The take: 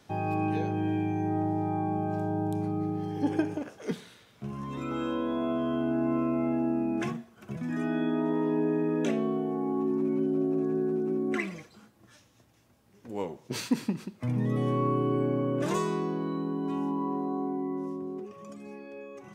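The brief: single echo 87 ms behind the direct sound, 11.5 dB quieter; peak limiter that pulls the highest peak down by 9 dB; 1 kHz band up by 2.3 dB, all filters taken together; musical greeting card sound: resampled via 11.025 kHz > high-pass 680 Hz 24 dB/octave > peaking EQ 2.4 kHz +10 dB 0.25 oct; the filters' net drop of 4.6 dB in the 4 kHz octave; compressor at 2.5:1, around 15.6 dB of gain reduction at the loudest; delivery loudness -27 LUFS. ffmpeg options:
-af "equalizer=f=1000:t=o:g=4,equalizer=f=4000:t=o:g=-7.5,acompressor=threshold=0.00501:ratio=2.5,alimiter=level_in=4.47:limit=0.0631:level=0:latency=1,volume=0.224,aecho=1:1:87:0.266,aresample=11025,aresample=44100,highpass=f=680:w=0.5412,highpass=f=680:w=1.3066,equalizer=f=2400:t=o:w=0.25:g=10,volume=21.1"

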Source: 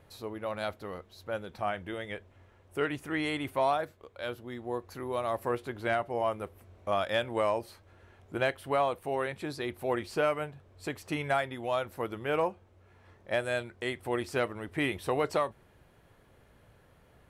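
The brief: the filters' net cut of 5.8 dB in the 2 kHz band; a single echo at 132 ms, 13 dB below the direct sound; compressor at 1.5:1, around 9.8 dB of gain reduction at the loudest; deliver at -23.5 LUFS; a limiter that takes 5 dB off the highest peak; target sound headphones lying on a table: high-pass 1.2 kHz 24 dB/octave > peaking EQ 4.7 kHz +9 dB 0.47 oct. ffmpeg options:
-af "equalizer=f=2000:t=o:g=-7.5,acompressor=threshold=0.00224:ratio=1.5,alimiter=level_in=2.66:limit=0.0631:level=0:latency=1,volume=0.376,highpass=f=1200:w=0.5412,highpass=f=1200:w=1.3066,equalizer=f=4700:t=o:w=0.47:g=9,aecho=1:1:132:0.224,volume=26.6"

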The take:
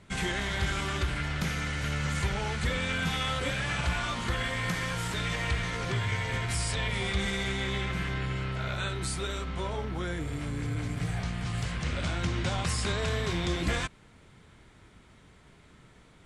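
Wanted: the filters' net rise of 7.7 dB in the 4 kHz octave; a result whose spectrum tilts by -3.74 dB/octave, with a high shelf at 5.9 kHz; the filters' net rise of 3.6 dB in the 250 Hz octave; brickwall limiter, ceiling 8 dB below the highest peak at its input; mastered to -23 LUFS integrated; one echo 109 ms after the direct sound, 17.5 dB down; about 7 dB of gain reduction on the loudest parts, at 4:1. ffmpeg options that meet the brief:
-af "equalizer=f=250:t=o:g=5.5,equalizer=f=4000:t=o:g=7.5,highshelf=f=5900:g=6.5,acompressor=threshold=0.0282:ratio=4,alimiter=level_in=1.26:limit=0.0631:level=0:latency=1,volume=0.794,aecho=1:1:109:0.133,volume=3.76"

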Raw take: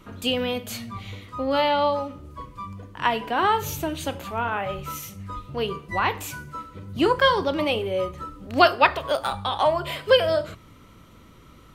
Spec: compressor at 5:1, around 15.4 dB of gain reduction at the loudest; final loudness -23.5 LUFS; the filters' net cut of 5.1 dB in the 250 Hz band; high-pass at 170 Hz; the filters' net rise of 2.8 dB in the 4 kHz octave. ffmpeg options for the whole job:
-af "highpass=170,equalizer=f=250:t=o:g=-6,equalizer=f=4000:t=o:g=4,acompressor=threshold=0.0355:ratio=5,volume=3.16"

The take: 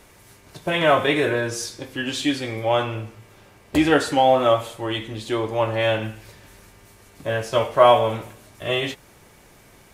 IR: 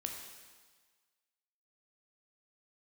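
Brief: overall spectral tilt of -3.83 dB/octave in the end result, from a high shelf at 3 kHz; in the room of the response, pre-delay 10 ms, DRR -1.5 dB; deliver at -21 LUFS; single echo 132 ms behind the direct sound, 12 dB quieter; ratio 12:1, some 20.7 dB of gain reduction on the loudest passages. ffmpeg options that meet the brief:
-filter_complex "[0:a]highshelf=f=3000:g=3.5,acompressor=threshold=0.0316:ratio=12,aecho=1:1:132:0.251,asplit=2[s0][s1];[1:a]atrim=start_sample=2205,adelay=10[s2];[s1][s2]afir=irnorm=-1:irlink=0,volume=1.26[s3];[s0][s3]amix=inputs=2:normalize=0,volume=3.16"

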